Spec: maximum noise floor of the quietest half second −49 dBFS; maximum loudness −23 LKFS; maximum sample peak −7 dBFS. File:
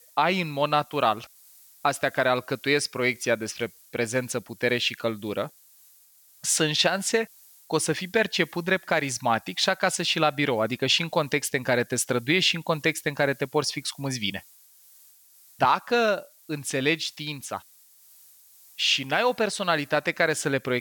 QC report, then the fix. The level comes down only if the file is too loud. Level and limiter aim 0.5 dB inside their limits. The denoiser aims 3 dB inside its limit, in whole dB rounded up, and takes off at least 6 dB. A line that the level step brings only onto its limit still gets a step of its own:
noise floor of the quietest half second −57 dBFS: in spec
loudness −25.0 LKFS: in spec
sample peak −9.0 dBFS: in spec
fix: no processing needed

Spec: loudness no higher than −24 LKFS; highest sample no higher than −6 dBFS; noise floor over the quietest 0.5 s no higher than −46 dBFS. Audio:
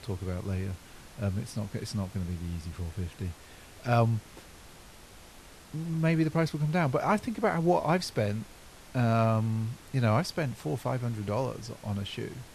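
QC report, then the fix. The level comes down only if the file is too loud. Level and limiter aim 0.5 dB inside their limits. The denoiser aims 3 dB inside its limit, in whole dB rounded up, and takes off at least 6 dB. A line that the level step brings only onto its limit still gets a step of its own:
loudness −30.5 LKFS: in spec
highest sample −12.0 dBFS: in spec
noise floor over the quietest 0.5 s −51 dBFS: in spec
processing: no processing needed

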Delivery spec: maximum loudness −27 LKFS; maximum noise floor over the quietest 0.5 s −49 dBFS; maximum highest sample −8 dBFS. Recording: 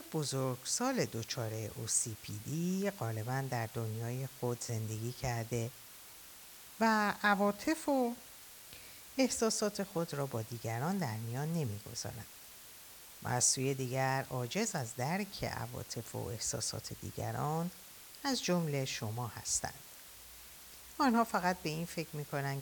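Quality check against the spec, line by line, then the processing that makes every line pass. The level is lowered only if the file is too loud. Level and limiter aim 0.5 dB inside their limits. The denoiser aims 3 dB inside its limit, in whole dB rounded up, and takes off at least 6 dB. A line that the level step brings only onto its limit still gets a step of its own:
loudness −36.0 LKFS: in spec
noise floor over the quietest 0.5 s −54 dBFS: in spec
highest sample −16.5 dBFS: in spec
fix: no processing needed

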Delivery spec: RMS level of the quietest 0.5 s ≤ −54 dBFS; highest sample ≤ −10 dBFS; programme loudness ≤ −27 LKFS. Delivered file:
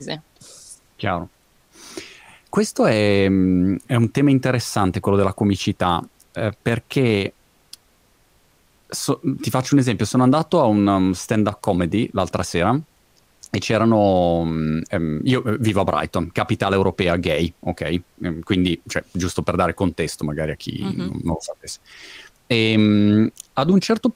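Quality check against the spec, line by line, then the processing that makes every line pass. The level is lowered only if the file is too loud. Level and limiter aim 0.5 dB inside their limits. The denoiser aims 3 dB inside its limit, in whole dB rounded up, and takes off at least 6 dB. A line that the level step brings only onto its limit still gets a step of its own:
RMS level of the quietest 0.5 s −58 dBFS: in spec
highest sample −4.5 dBFS: out of spec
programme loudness −20.0 LKFS: out of spec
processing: level −7.5 dB

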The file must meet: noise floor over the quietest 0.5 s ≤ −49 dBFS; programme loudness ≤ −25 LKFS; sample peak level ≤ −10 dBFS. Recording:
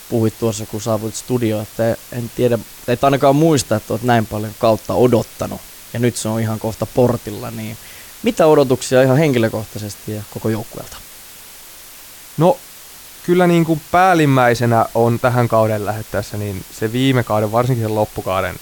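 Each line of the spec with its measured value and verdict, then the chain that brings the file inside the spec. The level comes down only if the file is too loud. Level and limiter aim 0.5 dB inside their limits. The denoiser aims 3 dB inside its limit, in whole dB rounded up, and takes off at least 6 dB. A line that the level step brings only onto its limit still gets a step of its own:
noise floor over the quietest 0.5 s −38 dBFS: out of spec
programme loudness −17.0 LKFS: out of spec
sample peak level −2.5 dBFS: out of spec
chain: broadband denoise 6 dB, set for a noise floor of −38 dBFS
level −8.5 dB

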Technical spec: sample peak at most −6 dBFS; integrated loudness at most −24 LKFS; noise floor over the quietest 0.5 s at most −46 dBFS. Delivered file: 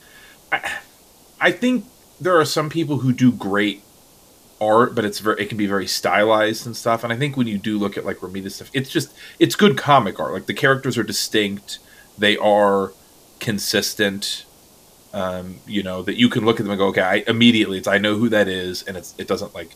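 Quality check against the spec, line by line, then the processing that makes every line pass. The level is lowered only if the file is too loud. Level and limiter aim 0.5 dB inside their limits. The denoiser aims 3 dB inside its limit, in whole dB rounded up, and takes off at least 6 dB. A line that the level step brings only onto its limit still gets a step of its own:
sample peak −1.5 dBFS: out of spec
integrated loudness −19.5 LKFS: out of spec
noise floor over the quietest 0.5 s −50 dBFS: in spec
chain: level −5 dB

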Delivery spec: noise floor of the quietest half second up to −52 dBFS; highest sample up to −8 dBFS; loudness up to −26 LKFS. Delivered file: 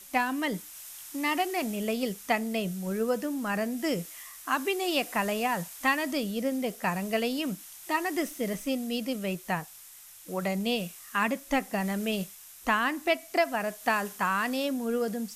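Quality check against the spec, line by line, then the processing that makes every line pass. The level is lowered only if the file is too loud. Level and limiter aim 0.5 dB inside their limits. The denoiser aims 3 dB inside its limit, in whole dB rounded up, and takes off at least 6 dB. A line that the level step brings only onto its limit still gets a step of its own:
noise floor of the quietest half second −50 dBFS: out of spec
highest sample −12.5 dBFS: in spec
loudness −30.0 LKFS: in spec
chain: broadband denoise 6 dB, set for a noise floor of −50 dBFS

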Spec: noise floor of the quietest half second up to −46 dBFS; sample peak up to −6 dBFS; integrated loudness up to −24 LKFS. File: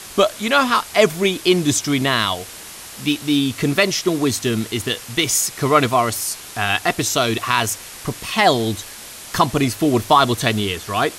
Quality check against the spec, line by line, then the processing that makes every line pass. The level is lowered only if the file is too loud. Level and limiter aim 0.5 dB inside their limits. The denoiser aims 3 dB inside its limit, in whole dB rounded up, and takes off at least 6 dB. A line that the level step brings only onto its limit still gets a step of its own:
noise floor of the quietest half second −36 dBFS: out of spec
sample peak −1.5 dBFS: out of spec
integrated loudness −18.5 LKFS: out of spec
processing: broadband denoise 7 dB, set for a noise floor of −36 dBFS
level −6 dB

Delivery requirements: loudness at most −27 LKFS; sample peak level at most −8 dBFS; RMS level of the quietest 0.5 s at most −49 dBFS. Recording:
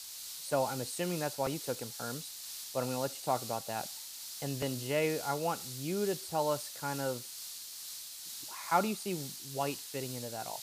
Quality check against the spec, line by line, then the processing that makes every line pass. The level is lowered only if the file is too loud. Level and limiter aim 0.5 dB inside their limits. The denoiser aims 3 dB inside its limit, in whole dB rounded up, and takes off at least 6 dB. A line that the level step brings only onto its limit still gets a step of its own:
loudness −36.0 LKFS: in spec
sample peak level −14.0 dBFS: in spec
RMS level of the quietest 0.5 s −45 dBFS: out of spec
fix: broadband denoise 7 dB, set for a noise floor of −45 dBFS

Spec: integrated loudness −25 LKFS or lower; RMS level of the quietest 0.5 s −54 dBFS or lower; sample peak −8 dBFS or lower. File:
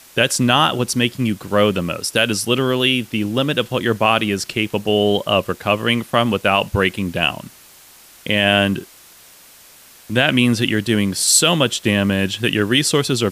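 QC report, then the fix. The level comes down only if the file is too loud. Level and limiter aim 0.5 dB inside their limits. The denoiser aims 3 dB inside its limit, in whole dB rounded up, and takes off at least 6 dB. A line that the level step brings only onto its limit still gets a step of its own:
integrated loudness −17.5 LKFS: out of spec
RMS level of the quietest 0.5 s −46 dBFS: out of spec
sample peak −2.0 dBFS: out of spec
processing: broadband denoise 6 dB, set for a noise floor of −46 dBFS
level −8 dB

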